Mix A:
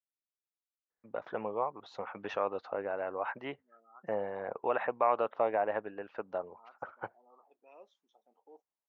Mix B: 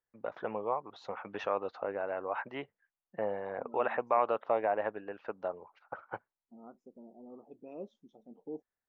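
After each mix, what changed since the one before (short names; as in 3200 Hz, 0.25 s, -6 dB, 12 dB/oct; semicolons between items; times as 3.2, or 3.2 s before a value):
first voice: entry -0.90 s; second voice: remove resonant high-pass 1100 Hz, resonance Q 1.7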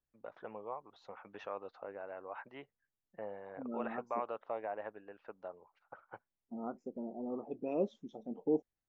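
first voice -10.0 dB; second voice +10.5 dB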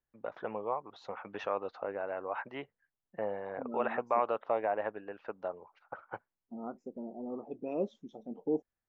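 first voice +8.5 dB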